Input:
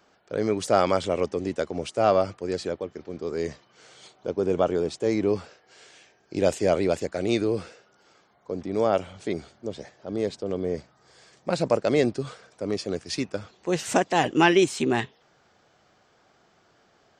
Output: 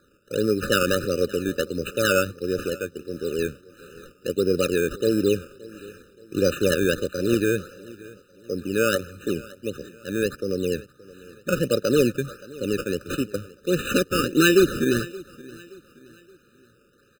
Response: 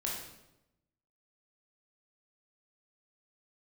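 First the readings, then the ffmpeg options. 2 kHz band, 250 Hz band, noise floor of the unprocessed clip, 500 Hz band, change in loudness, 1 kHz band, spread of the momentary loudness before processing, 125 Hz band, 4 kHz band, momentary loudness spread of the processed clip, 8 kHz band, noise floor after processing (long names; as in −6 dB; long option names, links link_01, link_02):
+5.0 dB, +3.0 dB, −63 dBFS, +1.5 dB, +2.0 dB, −5.5 dB, 13 LU, +3.5 dB, +4.5 dB, 16 LU, +5.0 dB, −59 dBFS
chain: -filter_complex "[0:a]highshelf=frequency=6200:gain=8.5,acrusher=samples=15:mix=1:aa=0.000001:lfo=1:lforange=15:lforate=1.5,asplit=2[link_01][link_02];[link_02]aecho=0:1:573|1146|1719:0.0891|0.0365|0.015[link_03];[link_01][link_03]amix=inputs=2:normalize=0,afftfilt=real='re*eq(mod(floor(b*sr/1024/600),2),0)':imag='im*eq(mod(floor(b*sr/1024/600),2),0)':win_size=1024:overlap=0.75,volume=3dB"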